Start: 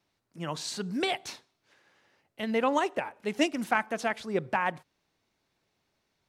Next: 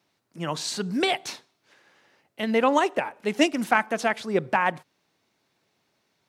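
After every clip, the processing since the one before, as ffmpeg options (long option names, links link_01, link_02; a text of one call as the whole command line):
ffmpeg -i in.wav -af "highpass=120,volume=5.5dB" out.wav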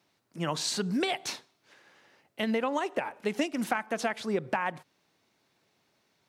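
ffmpeg -i in.wav -af "acompressor=threshold=-25dB:ratio=12" out.wav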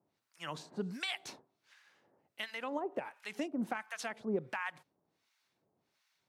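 ffmpeg -i in.wav -filter_complex "[0:a]acrossover=split=980[link_01][link_02];[link_01]aeval=exprs='val(0)*(1-1/2+1/2*cos(2*PI*1.4*n/s))':channel_layout=same[link_03];[link_02]aeval=exprs='val(0)*(1-1/2-1/2*cos(2*PI*1.4*n/s))':channel_layout=same[link_04];[link_03][link_04]amix=inputs=2:normalize=0,volume=-3.5dB" out.wav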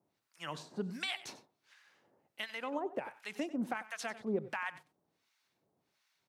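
ffmpeg -i in.wav -af "aecho=1:1:95:0.158" out.wav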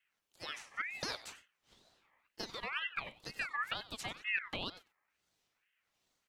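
ffmpeg -i in.wav -af "aeval=exprs='val(0)*sin(2*PI*1900*n/s+1900*0.25/2.1*sin(2*PI*2.1*n/s))':channel_layout=same,volume=1dB" out.wav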